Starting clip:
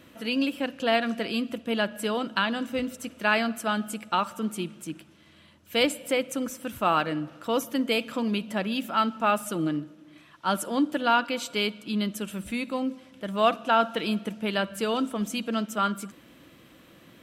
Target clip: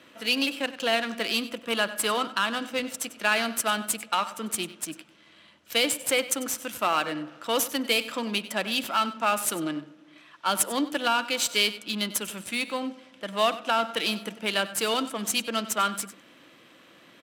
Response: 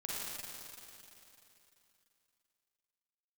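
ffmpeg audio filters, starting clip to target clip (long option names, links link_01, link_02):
-filter_complex "[0:a]aeval=exprs='if(lt(val(0),0),0.708*val(0),val(0))':channel_layout=same,asettb=1/sr,asplit=3[link_01][link_02][link_03];[link_01]atrim=end=1.614[link_04];[link_02]atrim=start=1.61:end=2.58,asetpts=PTS-STARTPTS,afade=type=in:duration=0.004:curve=qsin,afade=type=out:start_time=0.966:duration=0.004:curve=qsin,equalizer=frequency=1200:width_type=o:width=0.53:gain=7[link_05];[link_03]atrim=start=2.576[link_06];[link_04][link_05]acrossfade=duration=0.004:curve1=hsin:curve2=qsin[link_07];[link_07][link_06]acrossfade=duration=0.004:curve1=qsin:curve2=hsin,acrossover=split=420[link_08][link_09];[link_09]alimiter=limit=-18dB:level=0:latency=1:release=230[link_10];[link_08][link_10]amix=inputs=2:normalize=0,aemphasis=mode=production:type=riaa,adynamicsmooth=sensitivity=7.5:basefreq=3300,highpass=75,asplit=2[link_11][link_12];[link_12]aecho=0:1:96:0.158[link_13];[link_11][link_13]amix=inputs=2:normalize=0,volume=3.5dB"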